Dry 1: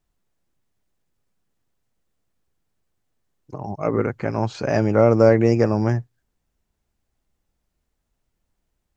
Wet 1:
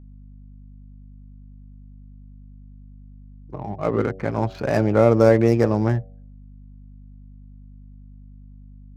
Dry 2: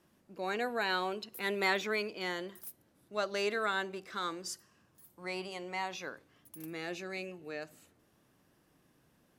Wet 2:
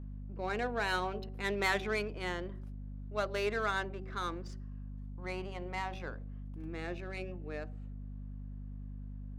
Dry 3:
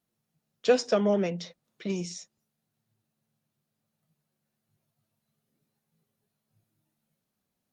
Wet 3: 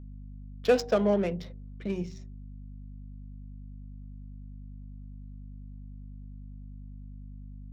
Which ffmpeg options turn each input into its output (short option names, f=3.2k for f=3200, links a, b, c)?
-af "adynamicsmooth=sensitivity=5.5:basefreq=1.7k,aeval=exprs='val(0)+0.00794*(sin(2*PI*50*n/s)+sin(2*PI*2*50*n/s)/2+sin(2*PI*3*50*n/s)/3+sin(2*PI*4*50*n/s)/4+sin(2*PI*5*50*n/s)/5)':c=same,bandreject=f=94.83:t=h:w=4,bandreject=f=189.66:t=h:w=4,bandreject=f=284.49:t=h:w=4,bandreject=f=379.32:t=h:w=4,bandreject=f=474.15:t=h:w=4,bandreject=f=568.98:t=h:w=4,bandreject=f=663.81:t=h:w=4,bandreject=f=758.64:t=h:w=4"